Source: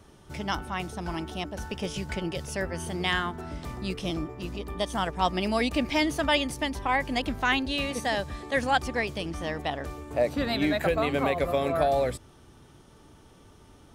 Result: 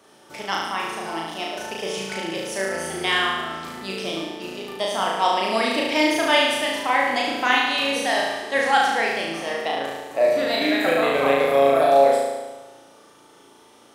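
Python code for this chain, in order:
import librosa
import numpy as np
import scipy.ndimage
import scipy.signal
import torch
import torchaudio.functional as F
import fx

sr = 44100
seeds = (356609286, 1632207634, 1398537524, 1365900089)

y = scipy.signal.sosfilt(scipy.signal.butter(2, 370.0, 'highpass', fs=sr, output='sos'), x)
y = fx.room_flutter(y, sr, wall_m=6.2, rt60_s=1.2)
y = y * 10.0 ** (3.0 / 20.0)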